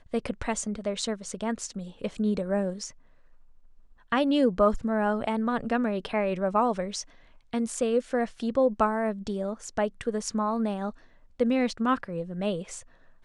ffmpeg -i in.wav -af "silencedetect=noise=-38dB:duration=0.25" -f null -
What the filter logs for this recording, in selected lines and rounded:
silence_start: 2.90
silence_end: 4.12 | silence_duration: 1.22
silence_start: 7.02
silence_end: 7.53 | silence_duration: 0.51
silence_start: 10.90
silence_end: 11.40 | silence_duration: 0.49
silence_start: 12.80
silence_end: 13.25 | silence_duration: 0.44